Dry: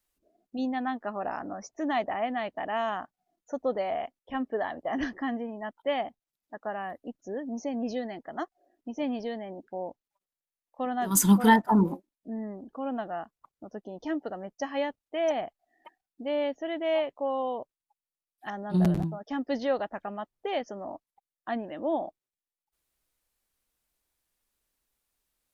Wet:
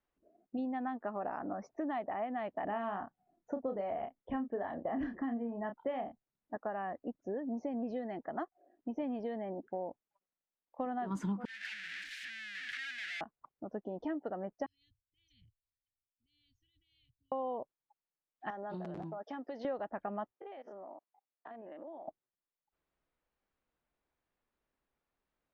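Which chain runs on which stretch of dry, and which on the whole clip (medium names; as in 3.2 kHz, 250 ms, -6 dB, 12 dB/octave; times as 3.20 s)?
2.64–6.57 s: bass shelf 220 Hz +9.5 dB + doubling 30 ms -7 dB
11.45–13.21 s: one-bit comparator + elliptic high-pass 1.7 kHz
14.66–17.32 s: Chebyshev band-stop 110–4200 Hz, order 4 + transient shaper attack -9 dB, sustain +6 dB + treble shelf 4.4 kHz -8 dB
18.50–19.65 s: tone controls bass -15 dB, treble +10 dB + compression 12:1, threshold -38 dBFS
20.31–22.08 s: spectrogram pixelated in time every 50 ms + high-pass 350 Hz + compression 16:1, threshold -45 dBFS
whole clip: Bessel low-pass 1.5 kHz, order 2; bass shelf 60 Hz -9.5 dB; compression, threshold -36 dBFS; trim +1.5 dB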